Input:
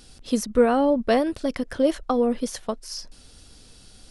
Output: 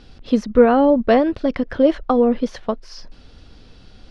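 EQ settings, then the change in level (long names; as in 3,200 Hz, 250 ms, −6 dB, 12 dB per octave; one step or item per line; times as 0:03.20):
high-frequency loss of the air 240 metres
+6.5 dB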